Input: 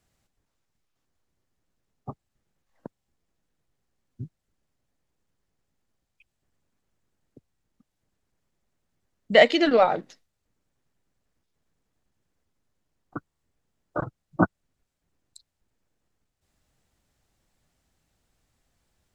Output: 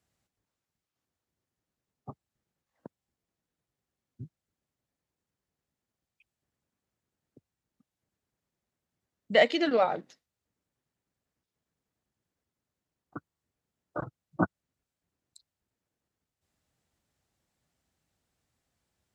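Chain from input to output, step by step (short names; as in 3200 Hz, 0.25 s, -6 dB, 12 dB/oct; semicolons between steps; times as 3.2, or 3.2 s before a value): HPF 66 Hz; gain -6 dB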